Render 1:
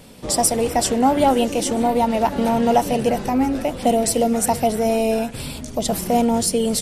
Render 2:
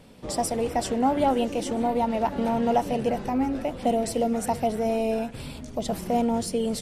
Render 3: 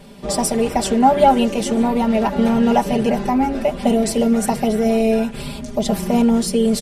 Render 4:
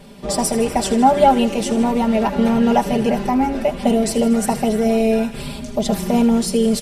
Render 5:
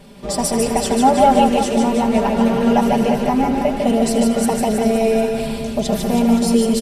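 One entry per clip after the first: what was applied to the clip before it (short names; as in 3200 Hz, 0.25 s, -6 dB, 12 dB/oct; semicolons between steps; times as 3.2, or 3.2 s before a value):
high shelf 5000 Hz -10 dB; gain -6 dB
comb 5 ms, depth 88%; gain +6.5 dB
thin delay 79 ms, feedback 72%, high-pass 1500 Hz, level -13.5 dB
reverse bouncing-ball echo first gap 0.15 s, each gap 1.15×, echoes 5; gain -1 dB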